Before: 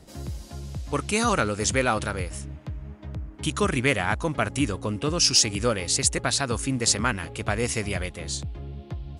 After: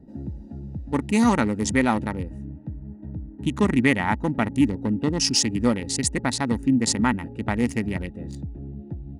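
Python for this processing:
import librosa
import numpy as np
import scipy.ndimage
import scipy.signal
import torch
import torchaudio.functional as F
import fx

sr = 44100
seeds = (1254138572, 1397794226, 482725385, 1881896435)

y = fx.wiener(x, sr, points=41)
y = fx.small_body(y, sr, hz=(240.0, 880.0, 1900.0), ring_ms=30, db=13)
y = y * 10.0 ** (-2.0 / 20.0)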